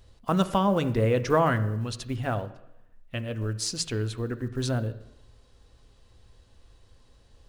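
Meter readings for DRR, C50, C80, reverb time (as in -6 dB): 10.0 dB, 14.5 dB, 16.5 dB, 0.85 s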